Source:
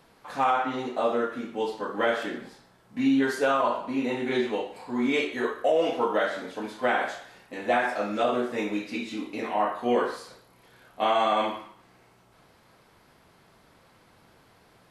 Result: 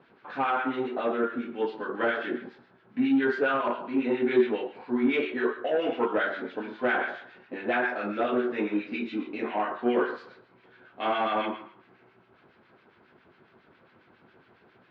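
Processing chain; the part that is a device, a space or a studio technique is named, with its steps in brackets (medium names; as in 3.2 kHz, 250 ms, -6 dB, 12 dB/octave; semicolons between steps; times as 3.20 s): guitar amplifier with harmonic tremolo (harmonic tremolo 7.3 Hz, depth 70%, crossover 1.3 kHz; saturation -20 dBFS, distortion -18 dB; cabinet simulation 91–3600 Hz, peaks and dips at 240 Hz +5 dB, 370 Hz +9 dB, 1.5 kHz +7 dB, 2.5 kHz +3 dB)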